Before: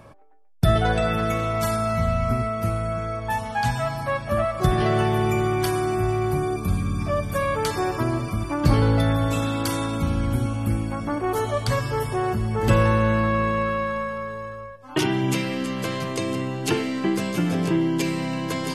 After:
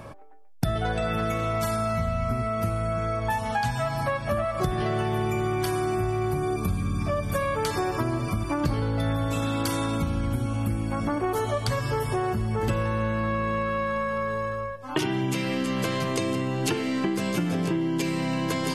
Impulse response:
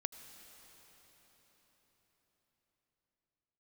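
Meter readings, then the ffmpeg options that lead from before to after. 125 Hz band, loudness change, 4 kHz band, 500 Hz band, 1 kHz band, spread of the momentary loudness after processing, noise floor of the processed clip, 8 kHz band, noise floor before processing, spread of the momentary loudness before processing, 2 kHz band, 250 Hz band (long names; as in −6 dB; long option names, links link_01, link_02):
−4.0 dB, −3.5 dB, −2.5 dB, −3.0 dB, −3.0 dB, 2 LU, −33 dBFS, −2.0 dB, −37 dBFS, 7 LU, −3.0 dB, −3.0 dB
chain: -af "acompressor=threshold=-29dB:ratio=6,volume=5.5dB"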